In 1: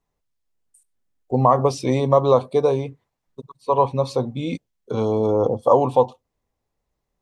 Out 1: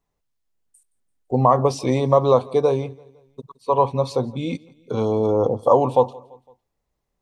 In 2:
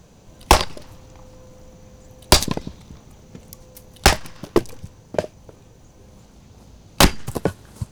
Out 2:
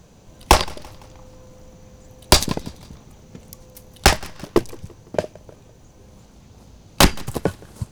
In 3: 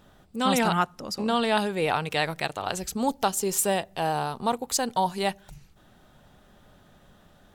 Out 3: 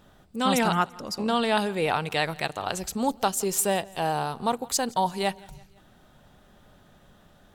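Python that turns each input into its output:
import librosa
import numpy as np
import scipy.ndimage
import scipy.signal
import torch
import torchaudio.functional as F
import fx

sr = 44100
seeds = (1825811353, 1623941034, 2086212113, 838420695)

y = fx.echo_feedback(x, sr, ms=169, feedback_pct=50, wet_db=-24)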